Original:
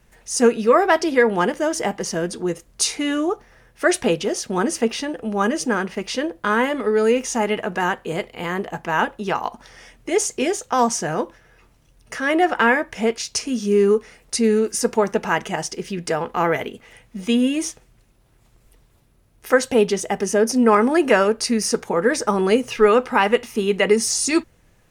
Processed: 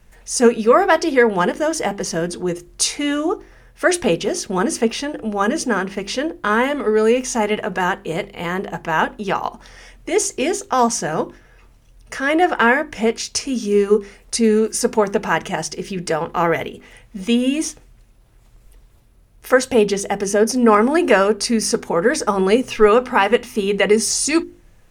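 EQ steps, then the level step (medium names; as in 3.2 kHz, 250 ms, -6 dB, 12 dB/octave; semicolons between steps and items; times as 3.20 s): bass shelf 65 Hz +9.5 dB; hum notches 50/100/150/200/250/300/350/400 Hz; +2.0 dB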